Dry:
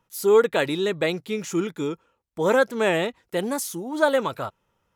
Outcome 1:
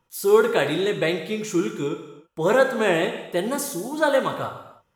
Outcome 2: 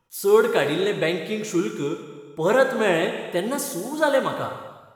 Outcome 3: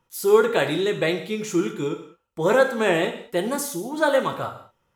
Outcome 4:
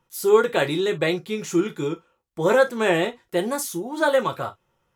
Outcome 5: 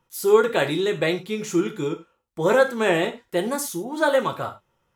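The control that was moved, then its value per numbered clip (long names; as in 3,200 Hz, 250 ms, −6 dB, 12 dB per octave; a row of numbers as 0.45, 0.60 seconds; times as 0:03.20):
reverb whose tail is shaped and stops, gate: 350, 530, 240, 80, 130 milliseconds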